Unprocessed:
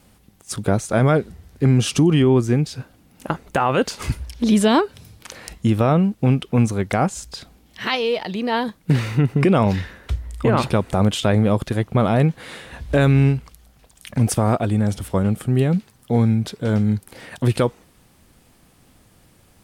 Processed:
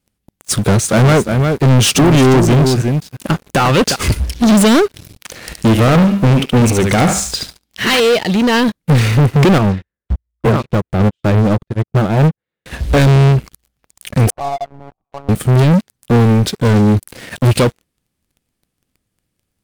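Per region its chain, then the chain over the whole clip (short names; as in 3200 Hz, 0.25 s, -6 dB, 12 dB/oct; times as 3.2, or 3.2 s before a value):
0.53–3.96 HPF 54 Hz + echo 0.354 s -10 dB
5.35–8 notches 50/100/150/200 Hz + thinning echo 72 ms, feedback 38%, high-pass 660 Hz, level -4 dB
9.58–12.66 LPF 1400 Hz 6 dB/oct + notch 260 Hz, Q 5.5 + upward expander 2.5:1, over -30 dBFS
14.3–15.29 vocal tract filter a + monotone LPC vocoder at 8 kHz 140 Hz
whole clip: bell 870 Hz -6 dB 1.3 oct; sample leveller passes 5; upward expander 1.5:1, over -24 dBFS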